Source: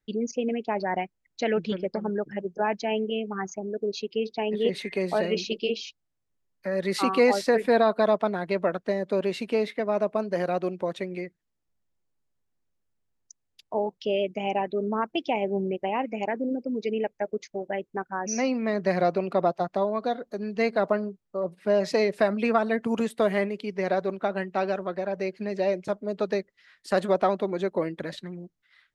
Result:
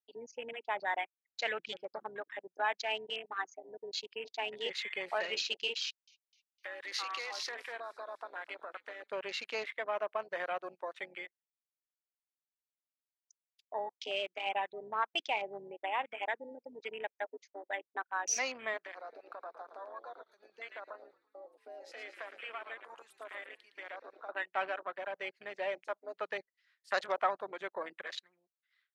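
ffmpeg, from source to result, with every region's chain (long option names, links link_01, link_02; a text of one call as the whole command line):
ffmpeg -i in.wav -filter_complex "[0:a]asettb=1/sr,asplit=3[link_01][link_02][link_03];[link_01]atrim=end=5.824[link_04];[link_02]atrim=start=5.82:end=9.1,asetpts=PTS-STARTPTS,afade=type=in:duration=0.004:curve=qsin,afade=type=out:start_time=3.276:duration=0.004:curve=qsin,highshelf=frequency=2100:gain=8.5,acompressor=threshold=-31dB:ratio=6:attack=3.2:release=140:knee=1:detection=peak,asplit=6[link_05][link_06][link_07][link_08][link_09][link_10];[link_06]adelay=254,afreqshift=-82,volume=-12dB[link_11];[link_07]adelay=508,afreqshift=-164,volume=-18.9dB[link_12];[link_08]adelay=762,afreqshift=-246,volume=-25.9dB[link_13];[link_09]adelay=1016,afreqshift=-328,volume=-32.8dB[link_14];[link_10]adelay=1270,afreqshift=-410,volume=-39.7dB[link_15];[link_05][link_11][link_12][link_13][link_14][link_15]amix=inputs=6:normalize=0,atrim=end_sample=144648[link_16];[link_03]atrim=start=9.096[link_17];[link_04][link_16]acrossfade=duration=0.004:curve1=hsin:curve2=qsin[link_18];[link_18][link_17]acrossfade=duration=0.004:curve1=qsin:curve2=hsin,asettb=1/sr,asplit=3[link_19][link_20][link_21];[link_19]atrim=end=18.774[link_22];[link_20]atrim=start=18.77:end=24.29,asetpts=PTS-STARTPTS,afade=type=in:duration=0.004:curve=qsin,afade=type=out:start_time=5.516:duration=0.004:curve=qsin,highpass=frequency=450:poles=1,acompressor=threshold=-35dB:ratio=4:attack=3.2:release=140:knee=1:detection=peak,asplit=8[link_23][link_24][link_25][link_26][link_27][link_28][link_29][link_30];[link_24]adelay=112,afreqshift=-66,volume=-7dB[link_31];[link_25]adelay=224,afreqshift=-132,volume=-11.9dB[link_32];[link_26]adelay=336,afreqshift=-198,volume=-16.8dB[link_33];[link_27]adelay=448,afreqshift=-264,volume=-21.6dB[link_34];[link_28]adelay=560,afreqshift=-330,volume=-26.5dB[link_35];[link_29]adelay=672,afreqshift=-396,volume=-31.4dB[link_36];[link_30]adelay=784,afreqshift=-462,volume=-36.3dB[link_37];[link_23][link_31][link_32][link_33][link_34][link_35][link_36][link_37]amix=inputs=8:normalize=0,atrim=end_sample=243432[link_38];[link_21]atrim=start=24.286[link_39];[link_22][link_38]acrossfade=duration=0.004:curve1=hsin:curve2=qsin[link_40];[link_40][link_39]acrossfade=duration=0.004:curve1=qsin:curve2=hsin,highpass=1100,afwtdn=0.00708" out.wav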